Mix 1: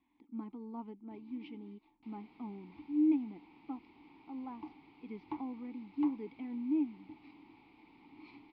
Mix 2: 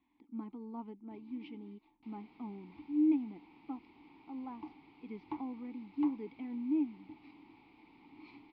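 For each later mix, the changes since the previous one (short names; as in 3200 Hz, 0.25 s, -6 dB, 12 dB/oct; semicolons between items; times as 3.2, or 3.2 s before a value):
none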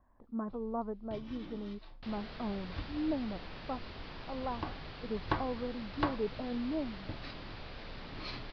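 speech: add ladder low-pass 1200 Hz, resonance 40%; master: remove vowel filter u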